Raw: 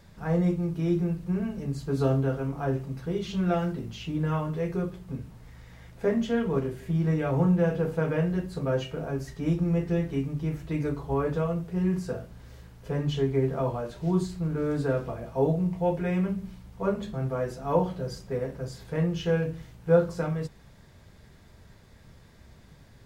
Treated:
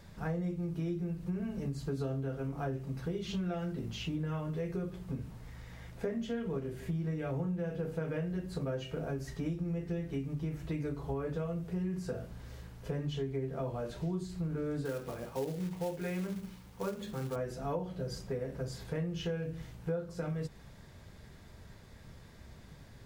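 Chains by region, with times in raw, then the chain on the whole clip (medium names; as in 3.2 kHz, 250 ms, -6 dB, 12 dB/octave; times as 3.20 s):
14.85–17.36 s: bass shelf 160 Hz -10.5 dB + short-mantissa float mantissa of 2-bit + band-stop 660 Hz, Q 7.6
whole clip: dynamic bell 990 Hz, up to -5 dB, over -45 dBFS, Q 1.9; compression 6:1, threshold -33 dBFS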